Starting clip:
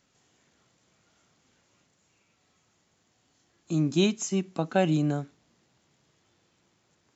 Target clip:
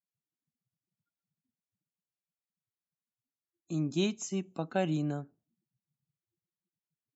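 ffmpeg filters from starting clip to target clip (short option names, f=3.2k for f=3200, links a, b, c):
-af "afftdn=nr=33:nf=-54,volume=-6.5dB"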